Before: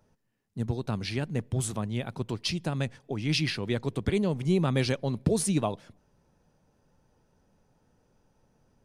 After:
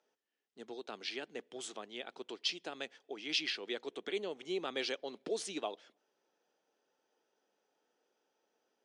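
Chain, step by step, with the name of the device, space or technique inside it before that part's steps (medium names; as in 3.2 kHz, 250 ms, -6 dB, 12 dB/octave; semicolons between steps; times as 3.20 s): 3.88–4.48 s: band-stop 4.8 kHz, Q 7.1; phone speaker on a table (cabinet simulation 360–7200 Hz, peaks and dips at 570 Hz -4 dB, 1 kHz -6 dB, 3.2 kHz +6 dB); trim -6 dB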